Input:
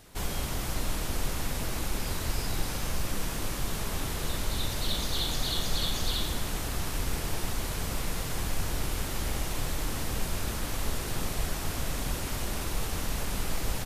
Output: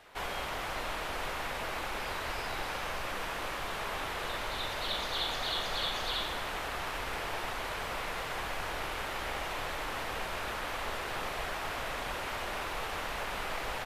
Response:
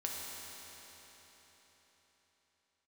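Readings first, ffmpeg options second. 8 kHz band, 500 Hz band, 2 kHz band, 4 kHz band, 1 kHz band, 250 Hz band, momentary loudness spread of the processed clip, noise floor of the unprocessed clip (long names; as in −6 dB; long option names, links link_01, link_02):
−11.0 dB, 0.0 dB, +3.5 dB, −2.0 dB, +4.0 dB, −9.5 dB, 4 LU, −34 dBFS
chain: -filter_complex "[0:a]acrossover=split=480 3300:gain=0.126 1 0.141[link_01][link_02][link_03];[link_01][link_02][link_03]amix=inputs=3:normalize=0,volume=4.5dB"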